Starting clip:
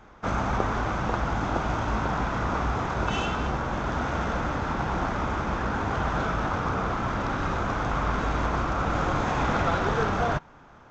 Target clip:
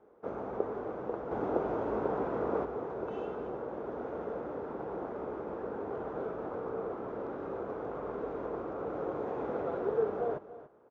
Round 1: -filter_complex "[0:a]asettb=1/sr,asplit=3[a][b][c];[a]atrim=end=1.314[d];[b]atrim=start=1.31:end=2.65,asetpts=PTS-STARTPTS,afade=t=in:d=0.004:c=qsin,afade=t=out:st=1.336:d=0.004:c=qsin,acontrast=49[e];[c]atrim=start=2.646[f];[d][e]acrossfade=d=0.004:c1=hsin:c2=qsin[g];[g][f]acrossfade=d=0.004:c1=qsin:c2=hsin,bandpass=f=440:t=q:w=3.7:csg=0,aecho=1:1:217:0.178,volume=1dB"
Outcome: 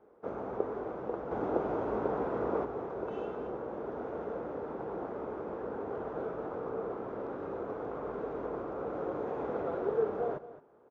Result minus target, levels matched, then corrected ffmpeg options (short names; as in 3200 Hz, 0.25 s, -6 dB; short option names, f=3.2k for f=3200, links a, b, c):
echo 73 ms early
-filter_complex "[0:a]asettb=1/sr,asplit=3[a][b][c];[a]atrim=end=1.314[d];[b]atrim=start=1.31:end=2.65,asetpts=PTS-STARTPTS,afade=t=in:d=0.004:c=qsin,afade=t=out:st=1.336:d=0.004:c=qsin,acontrast=49[e];[c]atrim=start=2.646[f];[d][e]acrossfade=d=0.004:c1=hsin:c2=qsin[g];[g][f]acrossfade=d=0.004:c1=qsin:c2=hsin,bandpass=f=440:t=q:w=3.7:csg=0,aecho=1:1:290:0.178,volume=1dB"